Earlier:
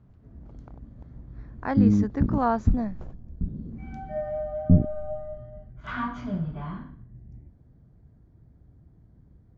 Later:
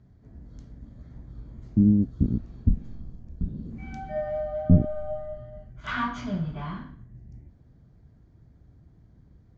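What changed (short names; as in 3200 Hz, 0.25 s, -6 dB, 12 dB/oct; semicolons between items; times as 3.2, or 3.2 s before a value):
speech: muted; master: add high shelf 2100 Hz +11 dB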